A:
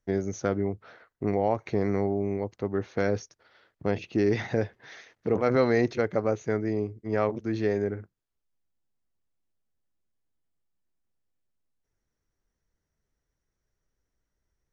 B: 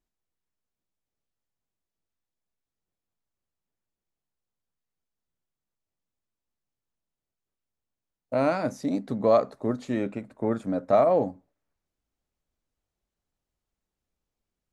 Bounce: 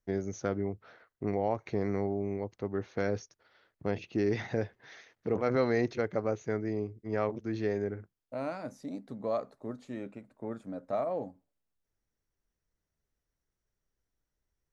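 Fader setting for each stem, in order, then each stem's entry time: -5.0 dB, -12.0 dB; 0.00 s, 0.00 s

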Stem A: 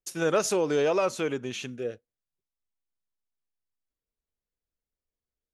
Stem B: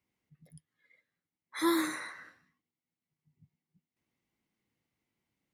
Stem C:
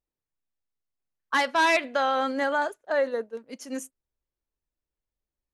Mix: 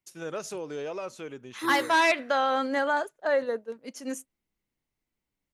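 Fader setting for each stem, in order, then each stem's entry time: -10.5 dB, -4.0 dB, -0.5 dB; 0.00 s, 0.00 s, 0.35 s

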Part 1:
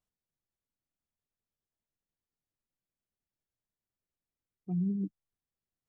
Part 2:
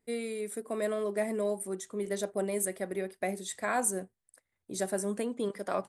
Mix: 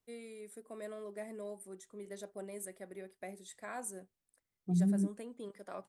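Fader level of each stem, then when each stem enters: +1.5 dB, -13.0 dB; 0.00 s, 0.00 s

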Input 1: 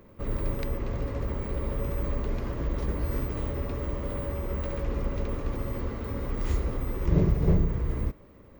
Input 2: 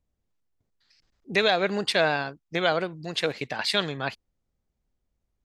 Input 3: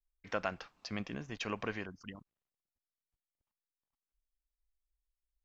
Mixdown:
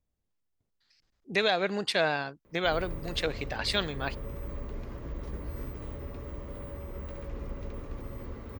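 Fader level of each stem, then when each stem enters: -8.5 dB, -4.0 dB, mute; 2.45 s, 0.00 s, mute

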